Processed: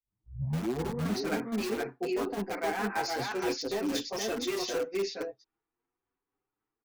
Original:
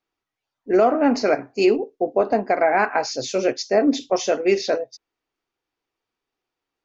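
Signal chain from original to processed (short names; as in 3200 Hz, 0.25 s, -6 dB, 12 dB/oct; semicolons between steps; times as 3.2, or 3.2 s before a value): tape start at the beginning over 1.27 s; low-pass opened by the level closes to 1400 Hz, open at -14 dBFS; bell 600 Hz -14 dB 0.31 oct; reverse; compressor 12:1, threshold -24 dBFS, peak gain reduction 12.5 dB; reverse; tremolo saw down 3.8 Hz, depth 55%; echo 0.467 s -4 dB; in parallel at -8.5 dB: wrapped overs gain 25.5 dB; on the sum: endless flanger 7.4 ms +0.78 Hz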